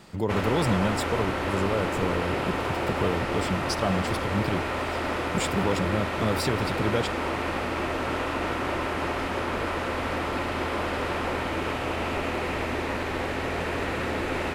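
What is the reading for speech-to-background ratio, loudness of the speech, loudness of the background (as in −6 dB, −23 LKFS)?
−1.0 dB, −29.5 LKFS, −28.5 LKFS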